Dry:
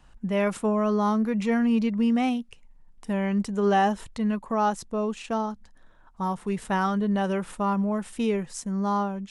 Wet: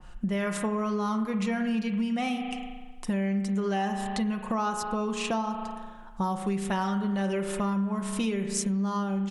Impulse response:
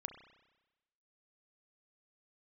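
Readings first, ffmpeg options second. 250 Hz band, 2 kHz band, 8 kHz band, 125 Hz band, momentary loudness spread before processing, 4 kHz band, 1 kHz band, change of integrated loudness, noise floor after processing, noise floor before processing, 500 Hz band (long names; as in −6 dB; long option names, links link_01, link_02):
−2.5 dB, −2.0 dB, +5.0 dB, −1.0 dB, 8 LU, +1.5 dB, −4.5 dB, −3.5 dB, −44 dBFS, −54 dBFS, −5.0 dB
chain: -filter_complex "[0:a]aecho=1:1:5.6:0.47[link_01];[1:a]atrim=start_sample=2205,asetrate=38367,aresample=44100[link_02];[link_01][link_02]afir=irnorm=-1:irlink=0,acompressor=threshold=-35dB:ratio=6,adynamicequalizer=threshold=0.002:dfrequency=2100:dqfactor=0.7:tfrequency=2100:tqfactor=0.7:attack=5:release=100:ratio=0.375:range=2.5:mode=boostabove:tftype=highshelf,volume=8.5dB"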